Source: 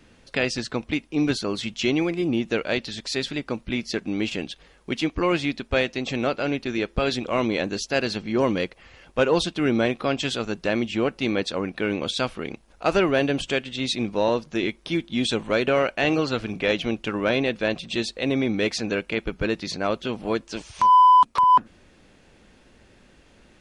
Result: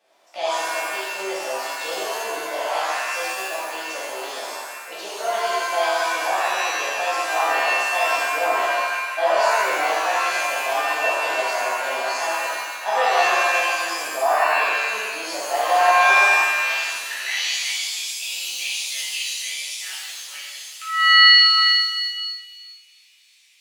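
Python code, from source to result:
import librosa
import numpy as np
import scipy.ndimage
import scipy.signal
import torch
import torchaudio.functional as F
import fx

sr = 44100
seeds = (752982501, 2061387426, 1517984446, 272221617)

y = fx.pitch_heads(x, sr, semitones=4.5)
y = fx.filter_sweep_highpass(y, sr, from_hz=690.0, to_hz=2500.0, start_s=16.05, end_s=17.54, q=4.1)
y = fx.rev_shimmer(y, sr, seeds[0], rt60_s=1.4, semitones=7, shimmer_db=-2, drr_db=-9.5)
y = F.gain(torch.from_numpy(y), -14.0).numpy()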